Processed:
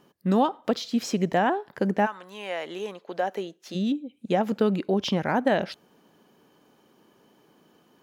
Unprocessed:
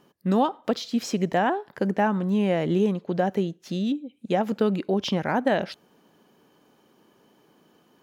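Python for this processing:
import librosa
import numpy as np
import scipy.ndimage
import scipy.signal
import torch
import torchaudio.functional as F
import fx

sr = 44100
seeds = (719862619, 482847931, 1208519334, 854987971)

y = fx.highpass(x, sr, hz=fx.line((2.05, 1100.0), (3.74, 380.0)), slope=12, at=(2.05, 3.74), fade=0.02)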